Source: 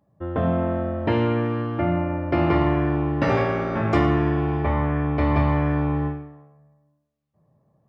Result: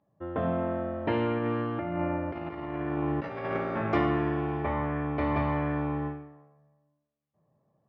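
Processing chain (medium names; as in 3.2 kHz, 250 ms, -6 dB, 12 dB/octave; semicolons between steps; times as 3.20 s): low-pass 3.6 kHz 12 dB/octave; bass shelf 130 Hz -10.5 dB; 1.37–3.57 s: compressor with a negative ratio -26 dBFS, ratio -0.5; trim -4.5 dB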